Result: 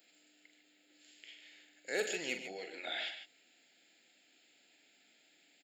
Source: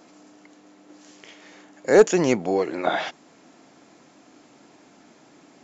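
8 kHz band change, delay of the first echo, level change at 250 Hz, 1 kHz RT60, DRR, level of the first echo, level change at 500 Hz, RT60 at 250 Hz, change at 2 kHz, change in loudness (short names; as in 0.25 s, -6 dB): n/a, 43 ms, -25.0 dB, none, none, -8.0 dB, -22.5 dB, none, -10.0 dB, -18.5 dB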